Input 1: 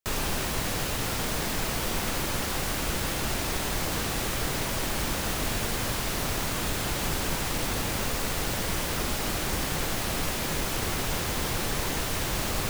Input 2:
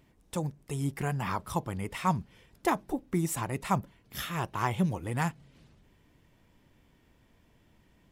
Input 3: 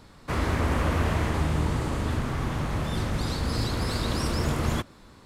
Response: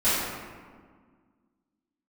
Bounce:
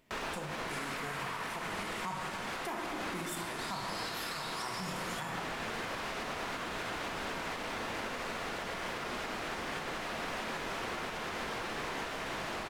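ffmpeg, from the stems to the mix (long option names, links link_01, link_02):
-filter_complex "[0:a]lowpass=1900,aemphasis=mode=production:type=riaa,adelay=50,volume=1dB,asplit=2[link_01][link_02];[link_02]volume=-22.5dB[link_03];[1:a]lowshelf=frequency=280:gain=-10,volume=-2.5dB,asplit=3[link_04][link_05][link_06];[link_05]volume=-14dB[link_07];[2:a]highpass=1400,adelay=400,volume=-3.5dB,asplit=2[link_08][link_09];[link_09]volume=-11dB[link_10];[link_06]apad=whole_len=561965[link_11];[link_01][link_11]sidechaincompress=threshold=-43dB:ratio=8:attack=16:release=134[link_12];[3:a]atrim=start_sample=2205[link_13];[link_03][link_07][link_10]amix=inputs=3:normalize=0[link_14];[link_14][link_13]afir=irnorm=-1:irlink=0[link_15];[link_12][link_04][link_08][link_15]amix=inputs=4:normalize=0,aeval=exprs='0.141*(abs(mod(val(0)/0.141+3,4)-2)-1)':channel_layout=same,alimiter=level_in=4.5dB:limit=-24dB:level=0:latency=1:release=337,volume=-4.5dB"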